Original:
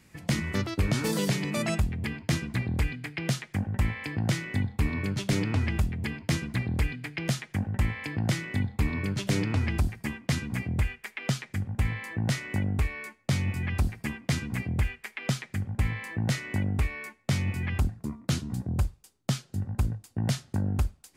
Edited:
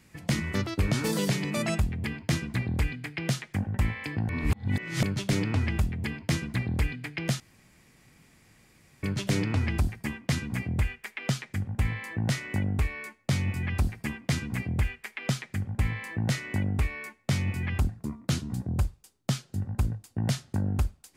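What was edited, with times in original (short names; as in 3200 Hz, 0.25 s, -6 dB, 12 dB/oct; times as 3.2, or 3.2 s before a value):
4.29–5.03 reverse
7.4–9.03 room tone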